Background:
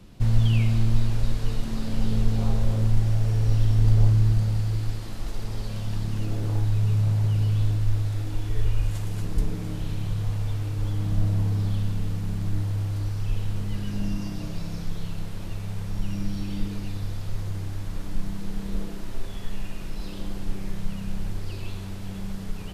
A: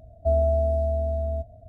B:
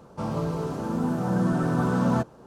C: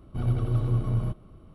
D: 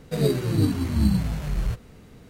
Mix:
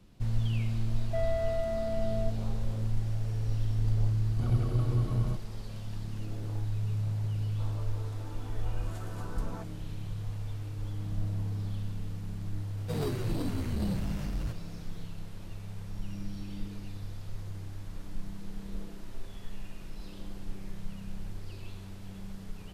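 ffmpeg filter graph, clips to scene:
-filter_complex "[0:a]volume=0.335[s0];[1:a]asplit=2[s1][s2];[s2]highpass=f=720:p=1,volume=10,asoftclip=type=tanh:threshold=0.224[s3];[s1][s3]amix=inputs=2:normalize=0,lowpass=f=1100:p=1,volume=0.501[s4];[2:a]highpass=390[s5];[4:a]asoftclip=type=tanh:threshold=0.0631[s6];[s4]atrim=end=1.68,asetpts=PTS-STARTPTS,volume=0.251,afade=t=in:d=0.004:c=hsin,afade=t=out:st=1.676:d=0.004:c=hsin,adelay=880[s7];[3:a]atrim=end=1.54,asetpts=PTS-STARTPTS,volume=0.708,afade=t=in:d=0.004:c=hsin,afade=t=out:st=1.536:d=0.004:c=hsin,adelay=4240[s8];[s5]atrim=end=2.46,asetpts=PTS-STARTPTS,volume=0.15,afade=t=in:d=0.004:c=hsin,afade=t=out:st=2.456:d=0.004:c=hsin,adelay=7410[s9];[s6]atrim=end=2.29,asetpts=PTS-STARTPTS,volume=0.562,afade=t=in:d=0.004:c=hsin,afade=t=out:st=2.286:d=0.004:c=hsin,adelay=12770[s10];[s0][s7][s8][s9][s10]amix=inputs=5:normalize=0"

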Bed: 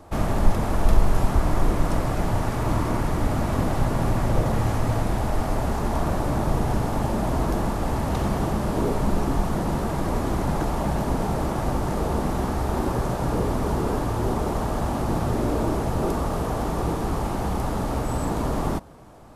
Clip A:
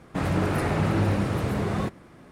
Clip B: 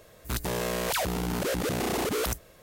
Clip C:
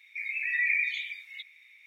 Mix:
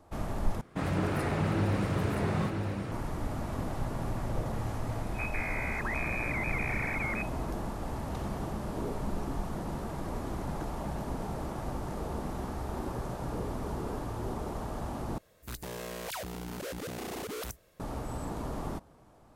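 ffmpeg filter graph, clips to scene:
-filter_complex "[2:a]asplit=2[s0][s1];[0:a]volume=0.266[s2];[1:a]aecho=1:1:973:0.562[s3];[s0]lowpass=f=2200:t=q:w=0.5098,lowpass=f=2200:t=q:w=0.6013,lowpass=f=2200:t=q:w=0.9,lowpass=f=2200:t=q:w=2.563,afreqshift=-2600[s4];[s2]asplit=3[s5][s6][s7];[s5]atrim=end=0.614[s8];[s3]atrim=end=2.31,asetpts=PTS-STARTPTS,volume=0.531[s9];[s6]atrim=start=2.916:end=15.184[s10];[s1]atrim=end=2.62,asetpts=PTS-STARTPTS,volume=0.316[s11];[s7]atrim=start=17.796[s12];[s4]atrim=end=2.62,asetpts=PTS-STARTPTS,volume=0.473,afade=t=in:d=0.004:c=hsin,afade=t=out:st=2.616:d=0.004:c=hsin,adelay=215649S[s13];[s8][s9]acrossfade=d=0.004:c1=hsin:c2=hsin[s14];[s14][s10]acrossfade=d=0.004:c1=hsin:c2=hsin[s15];[s15][s11]acrossfade=d=0.004:c1=hsin:c2=hsin[s16];[s16][s12]acrossfade=d=0.004:c1=hsin:c2=hsin[s17];[s17][s13]amix=inputs=2:normalize=0"

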